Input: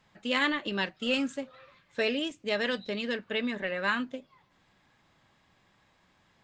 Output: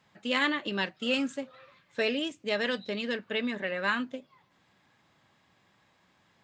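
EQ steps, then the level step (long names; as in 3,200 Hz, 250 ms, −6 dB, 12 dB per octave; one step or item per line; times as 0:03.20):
high-pass filter 87 Hz
0.0 dB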